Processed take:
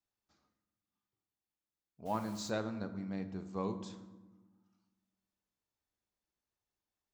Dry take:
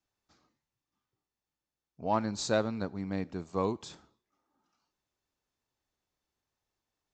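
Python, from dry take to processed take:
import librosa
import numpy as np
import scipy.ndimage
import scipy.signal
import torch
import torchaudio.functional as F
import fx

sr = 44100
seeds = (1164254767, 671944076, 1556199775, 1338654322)

y = fx.rev_fdn(x, sr, rt60_s=1.2, lf_ratio=1.5, hf_ratio=0.55, size_ms=29.0, drr_db=8.5)
y = fx.quant_dither(y, sr, seeds[0], bits=8, dither='none', at=(2.05, 2.49), fade=0.02)
y = y * librosa.db_to_amplitude(-8.0)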